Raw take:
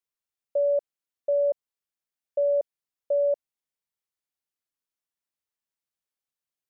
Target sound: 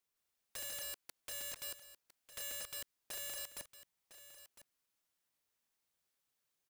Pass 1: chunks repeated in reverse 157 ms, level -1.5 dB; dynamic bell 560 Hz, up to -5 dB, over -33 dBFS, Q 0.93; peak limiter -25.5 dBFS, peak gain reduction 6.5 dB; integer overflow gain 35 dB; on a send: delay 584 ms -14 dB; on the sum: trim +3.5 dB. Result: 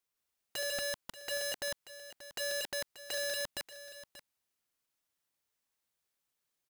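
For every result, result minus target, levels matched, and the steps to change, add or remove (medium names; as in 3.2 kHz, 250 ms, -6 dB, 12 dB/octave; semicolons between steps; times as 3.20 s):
integer overflow: distortion -14 dB; echo 422 ms early
change: integer overflow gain 43 dB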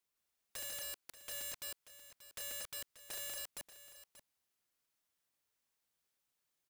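echo 422 ms early
change: delay 1006 ms -14 dB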